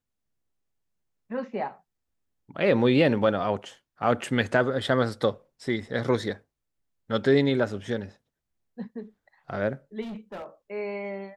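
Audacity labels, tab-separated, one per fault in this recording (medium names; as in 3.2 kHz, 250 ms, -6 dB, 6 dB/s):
10.010000	10.460000	clipped -34 dBFS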